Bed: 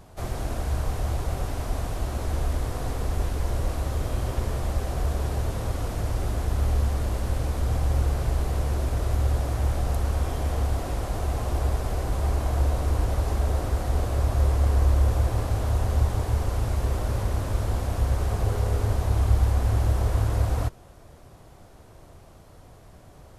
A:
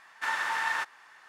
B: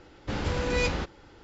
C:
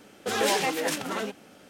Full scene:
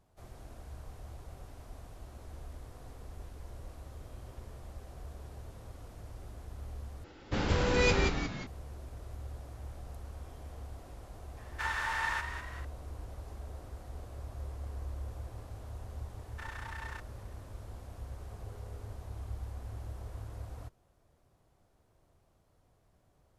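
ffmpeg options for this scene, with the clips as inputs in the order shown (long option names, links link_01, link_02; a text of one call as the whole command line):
ffmpeg -i bed.wav -i cue0.wav -i cue1.wav -filter_complex "[1:a]asplit=2[link_01][link_02];[0:a]volume=-20dB[link_03];[2:a]asplit=7[link_04][link_05][link_06][link_07][link_08][link_09][link_10];[link_05]adelay=177,afreqshift=-100,volume=-6dB[link_11];[link_06]adelay=354,afreqshift=-200,volume=-12.2dB[link_12];[link_07]adelay=531,afreqshift=-300,volume=-18.4dB[link_13];[link_08]adelay=708,afreqshift=-400,volume=-24.6dB[link_14];[link_09]adelay=885,afreqshift=-500,volume=-30.8dB[link_15];[link_10]adelay=1062,afreqshift=-600,volume=-37dB[link_16];[link_04][link_11][link_12][link_13][link_14][link_15][link_16]amix=inputs=7:normalize=0[link_17];[link_01]asplit=7[link_18][link_19][link_20][link_21][link_22][link_23][link_24];[link_19]adelay=199,afreqshift=46,volume=-9dB[link_25];[link_20]adelay=398,afreqshift=92,volume=-15.2dB[link_26];[link_21]adelay=597,afreqshift=138,volume=-21.4dB[link_27];[link_22]adelay=796,afreqshift=184,volume=-27.6dB[link_28];[link_23]adelay=995,afreqshift=230,volume=-33.8dB[link_29];[link_24]adelay=1194,afreqshift=276,volume=-40dB[link_30];[link_18][link_25][link_26][link_27][link_28][link_29][link_30]amix=inputs=7:normalize=0[link_31];[link_02]tremolo=f=30:d=0.75[link_32];[link_03]asplit=2[link_33][link_34];[link_33]atrim=end=7.044[link_35];[link_17]atrim=end=1.43,asetpts=PTS-STARTPTS,volume=-0.5dB[link_36];[link_34]atrim=start=8.466[link_37];[link_31]atrim=end=1.28,asetpts=PTS-STARTPTS,volume=-4.5dB,afade=type=in:duration=0.004:curve=hsin,afade=type=out:start_time=1.276:duration=0.004:curve=hsin,adelay=11370[link_38];[link_32]atrim=end=1.28,asetpts=PTS-STARTPTS,volume=-12dB,afade=type=in:duration=0.004:curve=hsin,afade=type=out:start_time=1.276:duration=0.004:curve=hsin,adelay=16160[link_39];[link_35][link_36]acrossfade=duration=0.004:curve1=hsin:curve2=hsin[link_40];[link_40][link_37]acrossfade=duration=0.004:curve1=hsin:curve2=hsin[link_41];[link_41][link_38][link_39]amix=inputs=3:normalize=0" out.wav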